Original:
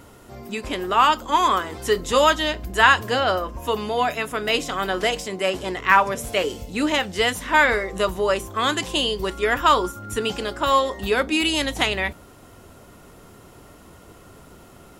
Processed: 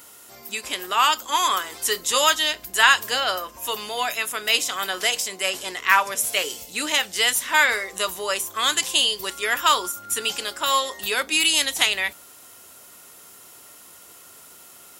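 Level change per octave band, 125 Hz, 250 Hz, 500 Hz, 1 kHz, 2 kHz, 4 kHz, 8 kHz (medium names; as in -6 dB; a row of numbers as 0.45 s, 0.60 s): under -15 dB, -11.5 dB, -8.0 dB, -3.0 dB, +0.5 dB, +4.0 dB, +10.0 dB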